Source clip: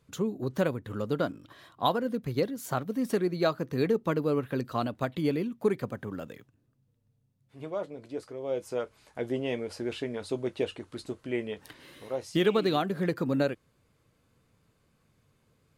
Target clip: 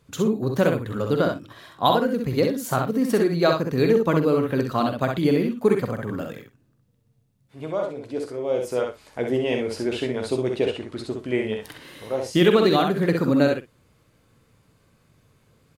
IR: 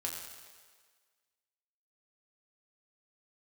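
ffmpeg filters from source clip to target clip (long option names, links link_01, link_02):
-filter_complex "[0:a]asettb=1/sr,asplit=3[link_01][link_02][link_03];[link_01]atrim=end=10.594[link_04];[link_02]atrim=start=10.59:end=11.19,asetpts=PTS-STARTPTS,afade=type=in:duration=0.004:curve=qsin,afade=type=out:start_time=0.596:duration=0.004:curve=qsin,highshelf=frequency=8000:gain=-8.5[link_05];[link_03]atrim=start=11.186[link_06];[link_04][link_05]acrossfade=duration=0.004:curve1=hsin:curve2=qsin[link_07];[link_07][link_06]acrossfade=duration=0.004:curve1=qsin:curve2=hsin,asplit=2[link_08][link_09];[link_09]aecho=0:1:46|64|117:0.299|0.596|0.119[link_10];[link_08][link_10]amix=inputs=2:normalize=0,volume=6.5dB"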